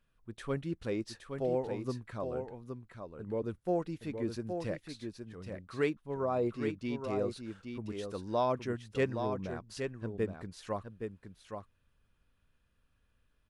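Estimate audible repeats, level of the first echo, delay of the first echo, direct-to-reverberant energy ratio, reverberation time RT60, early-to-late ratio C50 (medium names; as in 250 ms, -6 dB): 1, -6.5 dB, 819 ms, no reverb, no reverb, no reverb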